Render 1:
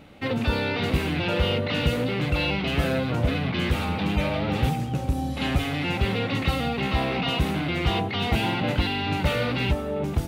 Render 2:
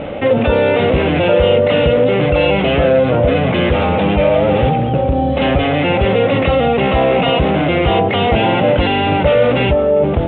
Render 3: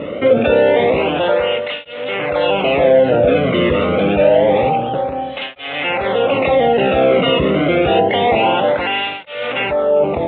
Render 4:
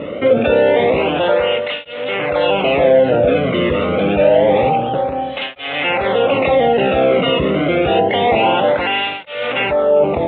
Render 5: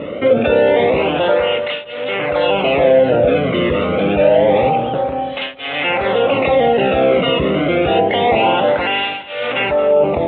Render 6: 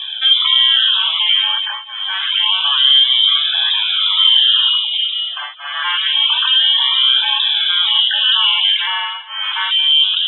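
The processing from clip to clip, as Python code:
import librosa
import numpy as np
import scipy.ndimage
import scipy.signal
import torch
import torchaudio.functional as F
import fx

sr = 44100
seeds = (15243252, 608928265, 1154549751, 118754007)

y1 = scipy.signal.sosfilt(scipy.signal.butter(12, 3500.0, 'lowpass', fs=sr, output='sos'), x)
y1 = fx.peak_eq(y1, sr, hz=550.0, db=13.0, octaves=0.84)
y1 = fx.env_flatten(y1, sr, amount_pct=50)
y1 = y1 * librosa.db_to_amplitude(4.5)
y2 = fx.flanger_cancel(y1, sr, hz=0.27, depth_ms=1.3)
y2 = y2 * librosa.db_to_amplitude(2.0)
y3 = fx.rider(y2, sr, range_db=3, speed_s=2.0)
y4 = fx.echo_feedback(y3, sr, ms=224, feedback_pct=34, wet_db=-17.5)
y5 = fx.spec_topn(y4, sr, count=64)
y5 = fx.freq_invert(y5, sr, carrier_hz=3700)
y5 = scipy.signal.sosfilt(scipy.signal.butter(4, 970.0, 'highpass', fs=sr, output='sos'), y5)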